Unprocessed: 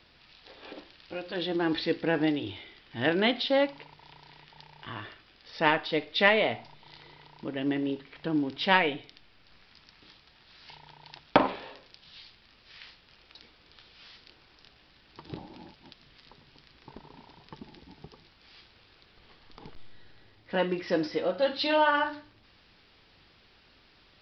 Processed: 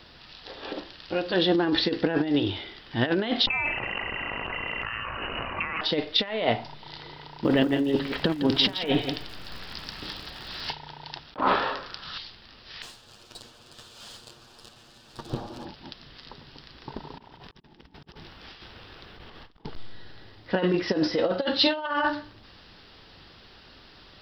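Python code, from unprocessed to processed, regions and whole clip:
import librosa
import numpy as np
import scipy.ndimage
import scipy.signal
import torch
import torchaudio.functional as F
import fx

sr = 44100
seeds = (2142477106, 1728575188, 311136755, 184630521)

y = fx.chain(x, sr, fx.freq_invert(carrier_hz=2900),
    fx.env_flatten(amount_pct=100), at=(3.47, 5.81))
y = fx.over_compress(y, sr, threshold_db=-34.0, ratio=-0.5, at=(7.44, 10.71), fade=0.02)
y = fx.dmg_crackle(y, sr, seeds[0], per_s=180.0, level_db=-48.0, at=(7.44, 10.71), fade=0.02)
y = fx.echo_single(y, sr, ms=167, db=-10.5, at=(7.44, 10.71), fade=0.02)
y = fx.chain(y, sr, fx.peak_eq(hz=1300.0, db=12.5, octaves=0.75),
    fx.over_compress(threshold_db=-29.0, ratio=-1.0), at=(11.41, 12.18))
y = fx.chain(y, sr, fx.lower_of_two(delay_ms=8.5),
    fx.peak_eq(hz=2000.0, db=-8.5, octaves=0.29), at=(12.82, 15.65))
y = fx.chain(y, sr, fx.peak_eq(hz=4500.0, db=-6.5, octaves=0.56),
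    fx.over_compress(threshold_db=-58.0, ratio=-0.5), at=(17.18, 19.65))
y = fx.peak_eq(y, sr, hz=2300.0, db=-6.5, octaves=0.32)
y = fx.over_compress(y, sr, threshold_db=-29.0, ratio=-0.5)
y = y * 10.0 ** (5.0 / 20.0)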